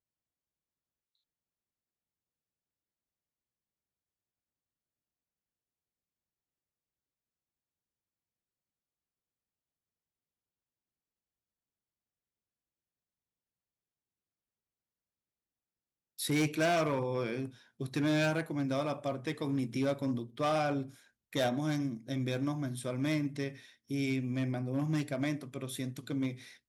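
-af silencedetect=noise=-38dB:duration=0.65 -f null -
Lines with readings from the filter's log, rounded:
silence_start: 0.00
silence_end: 16.19 | silence_duration: 16.19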